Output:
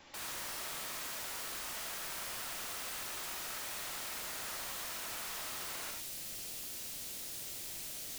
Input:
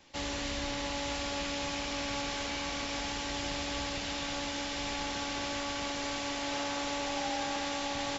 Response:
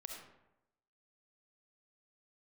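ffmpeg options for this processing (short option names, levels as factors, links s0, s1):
-filter_complex "[0:a]aeval=exprs='(mod(89.1*val(0)+1,2)-1)/89.1':c=same,asetnsamples=n=441:p=0,asendcmd='5.91 equalizer g -10.5',equalizer=f=1200:w=0.72:g=5[s0];[1:a]atrim=start_sample=2205,atrim=end_sample=4410[s1];[s0][s1]afir=irnorm=-1:irlink=0,volume=1.88"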